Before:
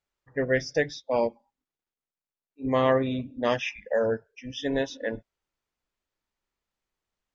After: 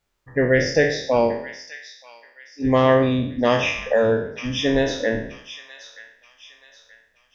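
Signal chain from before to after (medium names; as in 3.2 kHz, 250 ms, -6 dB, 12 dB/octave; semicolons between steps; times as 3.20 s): spectral sustain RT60 0.57 s; bass shelf 220 Hz +4.5 dB; in parallel at -1 dB: compression, threshold -32 dBFS, peak gain reduction 14.5 dB; on the sum: feedback echo behind a high-pass 928 ms, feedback 39%, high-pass 1.8 kHz, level -11 dB; trim +3.5 dB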